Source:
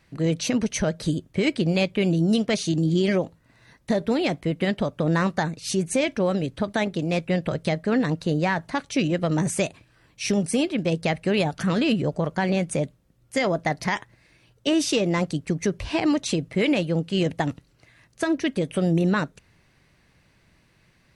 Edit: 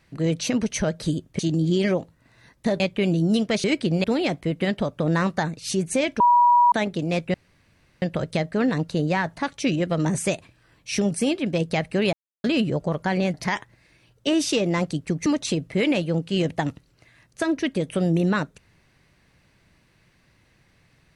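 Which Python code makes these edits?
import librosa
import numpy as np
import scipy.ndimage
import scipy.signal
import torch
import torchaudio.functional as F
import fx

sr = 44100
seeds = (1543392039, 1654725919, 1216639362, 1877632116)

y = fx.edit(x, sr, fx.swap(start_s=1.39, length_s=0.4, other_s=2.63, other_length_s=1.41),
    fx.bleep(start_s=6.2, length_s=0.52, hz=966.0, db=-12.5),
    fx.insert_room_tone(at_s=7.34, length_s=0.68),
    fx.silence(start_s=11.45, length_s=0.31),
    fx.cut(start_s=12.66, length_s=1.08),
    fx.cut(start_s=15.66, length_s=0.41), tone=tone)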